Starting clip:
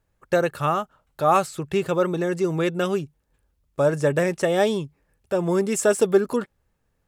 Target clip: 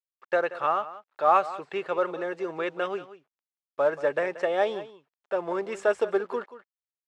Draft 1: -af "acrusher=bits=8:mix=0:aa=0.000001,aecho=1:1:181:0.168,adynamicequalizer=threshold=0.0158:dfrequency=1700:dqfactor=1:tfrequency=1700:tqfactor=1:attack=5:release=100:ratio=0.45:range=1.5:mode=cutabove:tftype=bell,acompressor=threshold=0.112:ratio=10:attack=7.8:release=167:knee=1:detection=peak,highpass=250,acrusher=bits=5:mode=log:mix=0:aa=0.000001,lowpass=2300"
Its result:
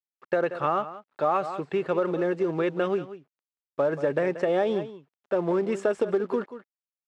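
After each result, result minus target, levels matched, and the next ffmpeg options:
compression: peak gain reduction +8.5 dB; 250 Hz band +7.0 dB
-af "acrusher=bits=8:mix=0:aa=0.000001,aecho=1:1:181:0.168,adynamicequalizer=threshold=0.0158:dfrequency=1700:dqfactor=1:tfrequency=1700:tqfactor=1:attack=5:release=100:ratio=0.45:range=1.5:mode=cutabove:tftype=bell,highpass=250,acrusher=bits=5:mode=log:mix=0:aa=0.000001,lowpass=2300"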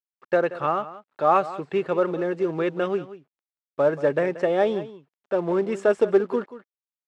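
250 Hz band +6.0 dB
-af "acrusher=bits=8:mix=0:aa=0.000001,aecho=1:1:181:0.168,adynamicequalizer=threshold=0.0158:dfrequency=1700:dqfactor=1:tfrequency=1700:tqfactor=1:attack=5:release=100:ratio=0.45:range=1.5:mode=cutabove:tftype=bell,highpass=600,acrusher=bits=5:mode=log:mix=0:aa=0.000001,lowpass=2300"

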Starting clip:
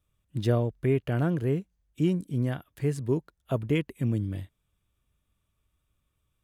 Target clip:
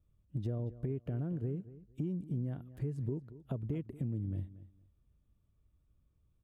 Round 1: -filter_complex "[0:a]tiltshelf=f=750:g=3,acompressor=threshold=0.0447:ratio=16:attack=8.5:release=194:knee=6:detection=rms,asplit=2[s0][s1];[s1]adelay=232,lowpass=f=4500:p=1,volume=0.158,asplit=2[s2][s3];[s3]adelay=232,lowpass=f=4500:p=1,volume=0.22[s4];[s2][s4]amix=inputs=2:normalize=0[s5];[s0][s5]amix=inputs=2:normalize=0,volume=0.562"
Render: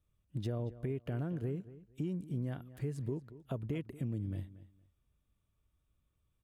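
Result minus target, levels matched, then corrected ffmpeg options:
1 kHz band +5.5 dB
-filter_complex "[0:a]tiltshelf=f=750:g=9.5,acompressor=threshold=0.0447:ratio=16:attack=8.5:release=194:knee=6:detection=rms,asplit=2[s0][s1];[s1]adelay=232,lowpass=f=4500:p=1,volume=0.158,asplit=2[s2][s3];[s3]adelay=232,lowpass=f=4500:p=1,volume=0.22[s4];[s2][s4]amix=inputs=2:normalize=0[s5];[s0][s5]amix=inputs=2:normalize=0,volume=0.562"

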